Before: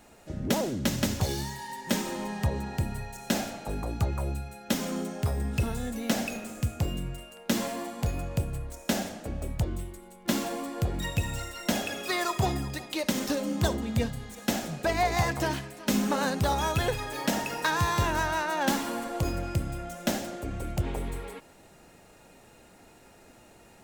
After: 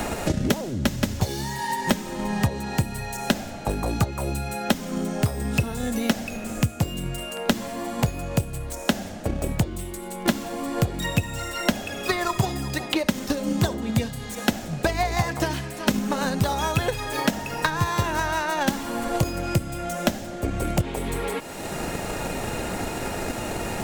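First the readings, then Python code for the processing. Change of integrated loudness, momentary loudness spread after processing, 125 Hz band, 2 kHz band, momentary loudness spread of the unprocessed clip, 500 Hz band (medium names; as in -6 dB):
+4.0 dB, 5 LU, +4.5 dB, +4.5 dB, 9 LU, +4.5 dB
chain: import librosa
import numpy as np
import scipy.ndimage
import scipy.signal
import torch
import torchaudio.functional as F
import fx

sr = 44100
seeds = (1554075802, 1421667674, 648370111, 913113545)

y = fx.transient(x, sr, attack_db=8, sustain_db=1)
y = fx.band_squash(y, sr, depth_pct=100)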